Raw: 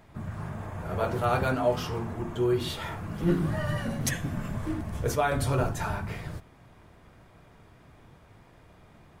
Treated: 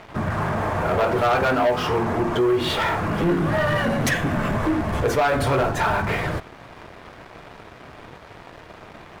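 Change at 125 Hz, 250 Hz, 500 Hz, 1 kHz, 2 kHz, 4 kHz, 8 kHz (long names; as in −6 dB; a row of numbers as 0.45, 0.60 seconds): +4.5, +7.5, +8.5, +10.0, +11.5, +9.5, +2.5 decibels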